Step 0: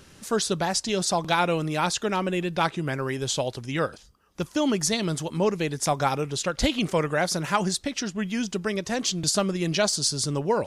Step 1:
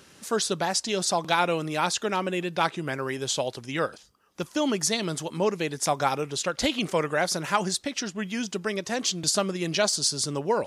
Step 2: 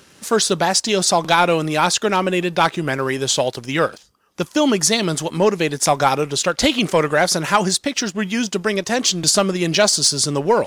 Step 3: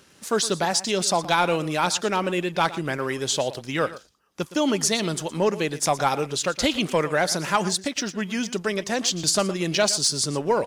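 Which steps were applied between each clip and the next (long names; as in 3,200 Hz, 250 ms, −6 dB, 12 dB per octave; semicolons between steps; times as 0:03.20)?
high-pass filter 240 Hz 6 dB per octave
leveller curve on the samples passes 1; level +5.5 dB
single-tap delay 116 ms −16 dB; level −6 dB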